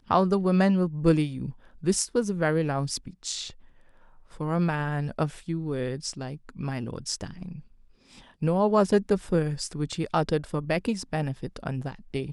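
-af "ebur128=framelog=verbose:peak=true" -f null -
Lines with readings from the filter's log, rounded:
Integrated loudness:
  I:         -27.3 LUFS
  Threshold: -38.0 LUFS
Loudness range:
  LRA:         6.3 LU
  Threshold: -48.6 LUFS
  LRA low:   -32.5 LUFS
  LRA high:  -26.1 LUFS
True peak:
  Peak:       -8.4 dBFS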